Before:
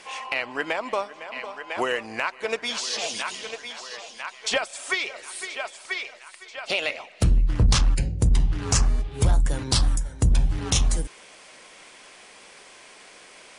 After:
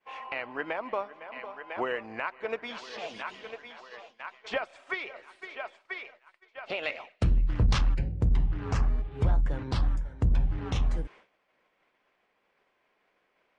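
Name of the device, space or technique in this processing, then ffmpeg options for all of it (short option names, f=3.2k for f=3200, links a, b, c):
hearing-loss simulation: -filter_complex "[0:a]lowpass=2.1k,agate=range=-33dB:threshold=-40dB:ratio=3:detection=peak,asettb=1/sr,asplit=3[a][b][c];[a]atrim=end=6.834[d];[b]atrim=start=6.83:end=7.94,asetpts=PTS-STARTPTS,afade=t=in:d=0.004:c=qsin,afade=t=out:st=1.106:d=0.004:c=qsin,highshelf=f=3.1k:g=11.5[e];[c]atrim=start=7.936[f];[d][e]acrossfade=d=0.004:c1=hsin:c2=qsin[g];[g][f]acrossfade=d=0.004:c1=qsin:c2=hsin,volume=-5dB"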